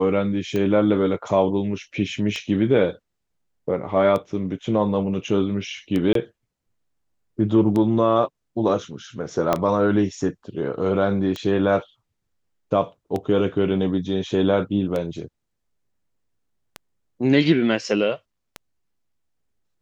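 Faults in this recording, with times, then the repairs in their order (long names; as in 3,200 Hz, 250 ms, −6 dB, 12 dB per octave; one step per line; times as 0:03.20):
scratch tick 33 1/3 rpm −14 dBFS
0:06.13–0:06.15: drop-out 23 ms
0:09.53: click −6 dBFS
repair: click removal
repair the gap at 0:06.13, 23 ms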